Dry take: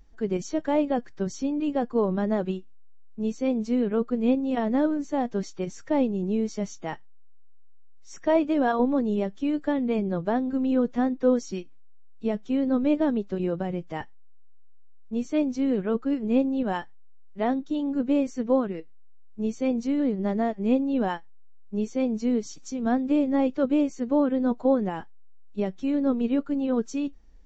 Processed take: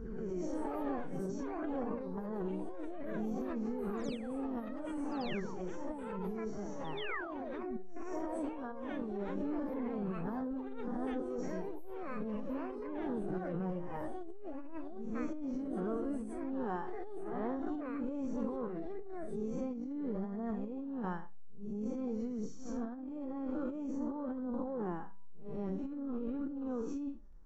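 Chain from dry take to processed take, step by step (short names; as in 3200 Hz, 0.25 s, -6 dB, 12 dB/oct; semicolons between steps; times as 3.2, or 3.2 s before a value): time blur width 0.145 s; fifteen-band EQ 250 Hz -3 dB, 630 Hz -8 dB, 6300 Hz +5 dB; painted sound fall, 6.97–7.77, 210–3700 Hz -28 dBFS; resonant high shelf 1800 Hz -12.5 dB, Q 1.5; de-hum 194.9 Hz, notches 5; reverse echo 0.129 s -11.5 dB; flange 0.49 Hz, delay 0.1 ms, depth 6.9 ms, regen +44%; negative-ratio compressor -36 dBFS, ratio -0.5; echoes that change speed 0.276 s, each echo +6 st, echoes 2, each echo -6 dB; backwards sustainer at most 23 dB/s; gain -2.5 dB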